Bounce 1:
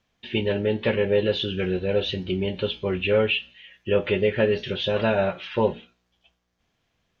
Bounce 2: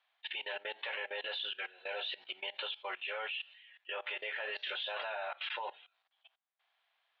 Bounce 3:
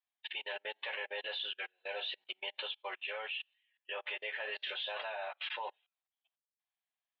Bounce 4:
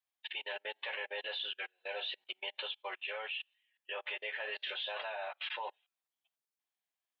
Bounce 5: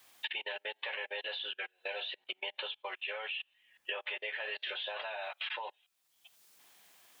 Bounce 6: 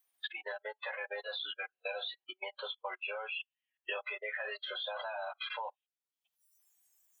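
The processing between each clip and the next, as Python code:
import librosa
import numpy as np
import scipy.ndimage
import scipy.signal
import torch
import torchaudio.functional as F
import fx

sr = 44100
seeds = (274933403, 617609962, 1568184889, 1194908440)

y1 = scipy.signal.sosfilt(scipy.signal.ellip(3, 1.0, 80, [740.0, 3900.0], 'bandpass', fs=sr, output='sos'), x)
y1 = fx.level_steps(y1, sr, step_db=20)
y1 = y1 * 10.0 ** (1.0 / 20.0)
y2 = fx.notch(y1, sr, hz=1400.0, q=11.0)
y2 = fx.upward_expand(y2, sr, threshold_db=-52.0, expansion=2.5)
y2 = y2 * 10.0 ** (1.5 / 20.0)
y3 = scipy.signal.sosfilt(scipy.signal.butter(2, 160.0, 'highpass', fs=sr, output='sos'), y2)
y4 = fx.band_squash(y3, sr, depth_pct=100)
y5 = fx.noise_reduce_blind(y4, sr, reduce_db=25)
y5 = y5 * 10.0 ** (2.0 / 20.0)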